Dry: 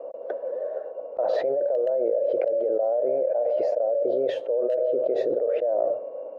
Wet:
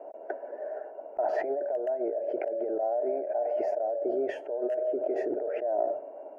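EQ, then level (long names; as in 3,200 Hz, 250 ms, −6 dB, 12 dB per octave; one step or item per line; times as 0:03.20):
parametric band 1,200 Hz +5.5 dB 0.82 octaves
phaser with its sweep stopped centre 770 Hz, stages 8
0.0 dB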